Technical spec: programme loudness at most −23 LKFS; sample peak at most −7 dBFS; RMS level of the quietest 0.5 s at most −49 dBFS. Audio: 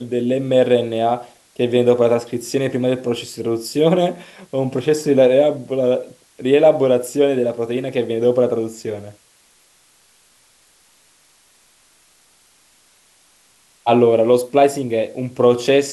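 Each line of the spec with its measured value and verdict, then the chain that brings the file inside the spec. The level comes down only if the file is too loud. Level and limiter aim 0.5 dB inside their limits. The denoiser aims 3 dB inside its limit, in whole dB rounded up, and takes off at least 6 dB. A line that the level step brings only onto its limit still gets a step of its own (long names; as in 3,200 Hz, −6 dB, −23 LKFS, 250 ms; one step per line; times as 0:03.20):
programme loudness −17.5 LKFS: out of spec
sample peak −2.0 dBFS: out of spec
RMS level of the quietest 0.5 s −55 dBFS: in spec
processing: level −6 dB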